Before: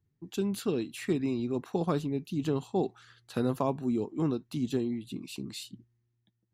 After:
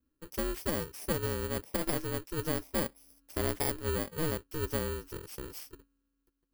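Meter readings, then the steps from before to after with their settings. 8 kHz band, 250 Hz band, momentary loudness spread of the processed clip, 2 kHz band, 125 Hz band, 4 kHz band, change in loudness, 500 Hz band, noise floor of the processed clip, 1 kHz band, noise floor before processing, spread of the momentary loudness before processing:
+6.5 dB, −8.0 dB, 10 LU, +6.0 dB, −2.5 dB, +1.5 dB, −2.0 dB, −2.5 dB, −81 dBFS, −2.0 dB, −78 dBFS, 9 LU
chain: samples in bit-reversed order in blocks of 32 samples
ring modulation 160 Hz

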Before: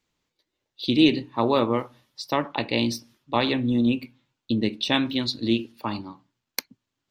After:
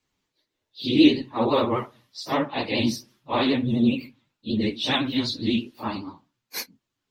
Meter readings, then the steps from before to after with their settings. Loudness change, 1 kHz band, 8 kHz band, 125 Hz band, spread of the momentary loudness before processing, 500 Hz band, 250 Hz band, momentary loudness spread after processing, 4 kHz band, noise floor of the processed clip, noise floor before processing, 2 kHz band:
+0.5 dB, 0.0 dB, 0.0 dB, 0.0 dB, 14 LU, 0.0 dB, +1.0 dB, 17 LU, 0.0 dB, −82 dBFS, −83 dBFS, −0.5 dB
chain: random phases in long frames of 100 ms
pitch vibrato 12 Hz 81 cents

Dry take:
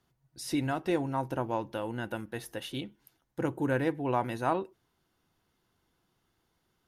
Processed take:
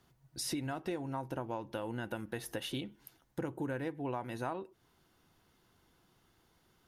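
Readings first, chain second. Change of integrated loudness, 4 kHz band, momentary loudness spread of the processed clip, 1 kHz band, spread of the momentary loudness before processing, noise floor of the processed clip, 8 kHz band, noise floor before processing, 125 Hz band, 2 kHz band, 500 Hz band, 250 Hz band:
−7.0 dB, −1.0 dB, 7 LU, −8.5 dB, 10 LU, −71 dBFS, +1.5 dB, −77 dBFS, −6.0 dB, −6.5 dB, −7.0 dB, −6.5 dB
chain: downward compressor 6 to 1, threshold −41 dBFS, peak gain reduction 17 dB
level +5.5 dB

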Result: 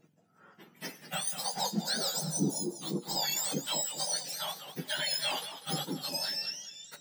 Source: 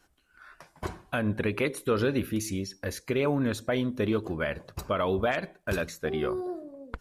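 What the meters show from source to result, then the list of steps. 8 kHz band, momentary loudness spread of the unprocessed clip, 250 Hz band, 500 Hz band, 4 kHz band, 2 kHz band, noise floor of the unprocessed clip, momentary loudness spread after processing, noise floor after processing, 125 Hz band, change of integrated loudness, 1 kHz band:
+10.5 dB, 10 LU, −8.0 dB, −13.0 dB, +9.5 dB, −7.0 dB, −66 dBFS, 8 LU, −65 dBFS, −8.5 dB, −2.5 dB, −3.5 dB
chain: frequency axis turned over on the octave scale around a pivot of 1,400 Hz
parametric band 1,200 Hz −12 dB 0.32 octaves
flanger 0.88 Hz, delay 6.1 ms, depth 3.2 ms, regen +76%
feedback echo with a swinging delay time 200 ms, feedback 31%, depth 145 cents, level −11 dB
level +4.5 dB

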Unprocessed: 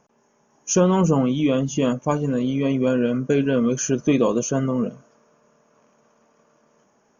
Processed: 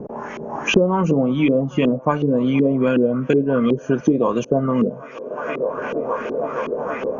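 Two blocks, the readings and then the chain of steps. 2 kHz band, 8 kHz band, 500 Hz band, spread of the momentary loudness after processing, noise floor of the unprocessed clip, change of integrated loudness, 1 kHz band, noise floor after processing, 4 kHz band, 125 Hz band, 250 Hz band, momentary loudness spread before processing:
+7.0 dB, can't be measured, +4.0 dB, 9 LU, −63 dBFS, +1.0 dB, +5.0 dB, −37 dBFS, +3.5 dB, +0.5 dB, +2.5 dB, 5 LU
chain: high-shelf EQ 4,500 Hz +11 dB
on a send: delay with a band-pass on its return 470 ms, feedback 82%, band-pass 1,100 Hz, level −24 dB
on the sum: auto-filter low-pass saw up 2.7 Hz 320–3,000 Hz
multiband upward and downward compressor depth 100%

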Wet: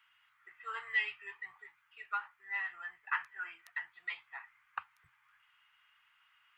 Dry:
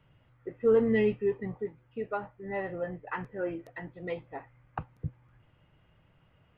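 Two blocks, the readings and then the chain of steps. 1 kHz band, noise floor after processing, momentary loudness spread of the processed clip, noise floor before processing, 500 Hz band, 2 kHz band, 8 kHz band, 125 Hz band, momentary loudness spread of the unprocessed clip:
−2.5 dB, −72 dBFS, 16 LU, −66 dBFS, below −30 dB, +5.0 dB, can't be measured, below −35 dB, 18 LU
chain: inverse Chebyshev high-pass filter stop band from 590 Hz, stop band 40 dB
level +5 dB

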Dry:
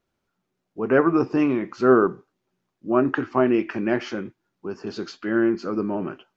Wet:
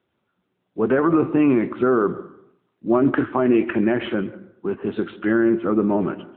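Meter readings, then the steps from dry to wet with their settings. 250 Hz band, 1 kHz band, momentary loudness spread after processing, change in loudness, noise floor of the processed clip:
+3.5 dB, +0.5 dB, 11 LU, +2.0 dB, −74 dBFS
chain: brickwall limiter −15 dBFS, peak gain reduction 10.5 dB
dense smooth reverb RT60 0.72 s, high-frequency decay 0.45×, pre-delay 120 ms, DRR 16.5 dB
level +6.5 dB
AMR narrowband 10.2 kbit/s 8,000 Hz

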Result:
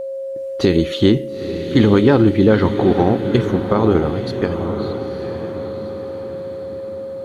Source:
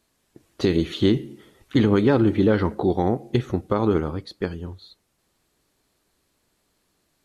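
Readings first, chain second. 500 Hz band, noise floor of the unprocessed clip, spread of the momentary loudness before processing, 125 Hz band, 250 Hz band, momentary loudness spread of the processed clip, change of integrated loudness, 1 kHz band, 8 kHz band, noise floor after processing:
+7.5 dB, −71 dBFS, 13 LU, +6.0 dB, +6.5 dB, 15 LU, +5.0 dB, +6.0 dB, can't be measured, −28 dBFS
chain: steady tone 540 Hz −29 dBFS
feedback delay with all-pass diffusion 915 ms, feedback 50%, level −8.5 dB
level +5.5 dB

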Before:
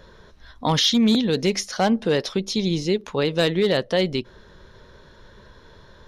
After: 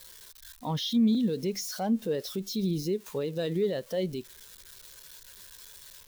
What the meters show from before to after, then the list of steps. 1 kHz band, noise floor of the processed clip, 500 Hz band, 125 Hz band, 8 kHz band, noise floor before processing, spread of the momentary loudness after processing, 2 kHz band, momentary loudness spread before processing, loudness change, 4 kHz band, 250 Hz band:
−12.0 dB, −53 dBFS, −9.0 dB, −7.5 dB, −8.5 dB, −50 dBFS, 22 LU, −17.0 dB, 6 LU, −8.5 dB, −13.5 dB, −6.0 dB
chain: spike at every zero crossing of −19.5 dBFS
brickwall limiter −17 dBFS, peak gain reduction 7.5 dB
every bin expanded away from the loudest bin 1.5 to 1

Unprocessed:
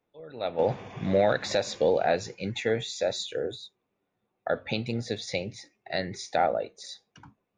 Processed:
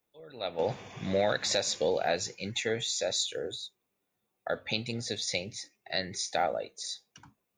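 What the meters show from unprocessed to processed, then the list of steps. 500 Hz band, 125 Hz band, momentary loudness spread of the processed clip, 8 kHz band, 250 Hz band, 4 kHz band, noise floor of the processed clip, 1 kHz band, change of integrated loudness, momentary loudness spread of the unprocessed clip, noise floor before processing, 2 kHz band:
−5.0 dB, −5.5 dB, 12 LU, +7.0 dB, −5.5 dB, +3.0 dB, −82 dBFS, −4.5 dB, −3.0 dB, 17 LU, −80 dBFS, −1.5 dB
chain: first-order pre-emphasis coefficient 0.8
level +8.5 dB

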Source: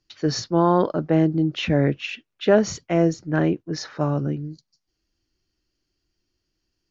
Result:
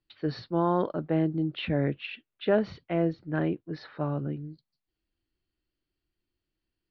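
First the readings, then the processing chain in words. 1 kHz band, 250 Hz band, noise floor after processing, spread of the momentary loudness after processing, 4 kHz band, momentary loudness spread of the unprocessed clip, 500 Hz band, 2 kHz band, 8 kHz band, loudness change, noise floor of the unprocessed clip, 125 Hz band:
−7.5 dB, −7.5 dB, below −85 dBFS, 11 LU, −9.5 dB, 11 LU, −7.5 dB, −7.5 dB, can't be measured, −7.5 dB, −79 dBFS, −7.5 dB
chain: Butterworth low-pass 4,200 Hz 48 dB per octave
level −7.5 dB

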